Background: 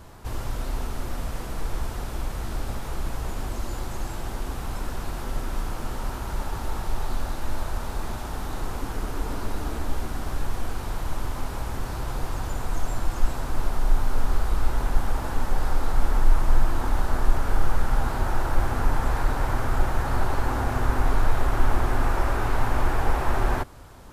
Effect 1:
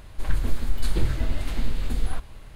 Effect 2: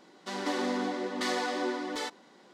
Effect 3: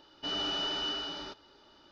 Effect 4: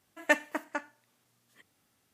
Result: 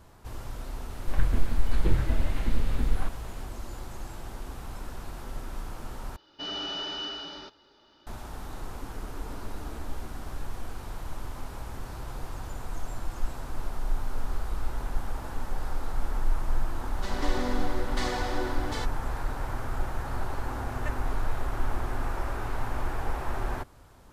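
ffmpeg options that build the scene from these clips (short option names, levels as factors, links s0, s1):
-filter_complex "[0:a]volume=0.398[s0];[1:a]acrossover=split=2800[s1][s2];[s2]acompressor=threshold=0.00224:ratio=4:attack=1:release=60[s3];[s1][s3]amix=inputs=2:normalize=0[s4];[s0]asplit=2[s5][s6];[s5]atrim=end=6.164[s7];[3:a]atrim=end=1.91,asetpts=PTS-STARTPTS,volume=0.891[s8];[s6]atrim=start=8.066[s9];[s4]atrim=end=2.55,asetpts=PTS-STARTPTS,volume=0.944,afade=t=in:d=0.004:c=hsin,afade=t=out:st=2.546:d=0.004:c=hsin,adelay=890[s10];[2:a]atrim=end=2.53,asetpts=PTS-STARTPTS,volume=0.841,afade=t=in:d=0.004:c=hsin,afade=t=out:st=2.526:d=0.004:c=hsin,adelay=16760[s11];[4:a]atrim=end=2.13,asetpts=PTS-STARTPTS,volume=0.141,afade=t=in:d=0.004:c=hsin,afade=t=out:st=2.126:d=0.004:c=hsin,adelay=20560[s12];[s7][s8]acrossfade=d=0.004:c1=hsin:c2=hsin[s13];[s13][s9]acrossfade=d=0.004:c1=hsin:c2=hsin[s14];[s14][s10][s11][s12]amix=inputs=4:normalize=0"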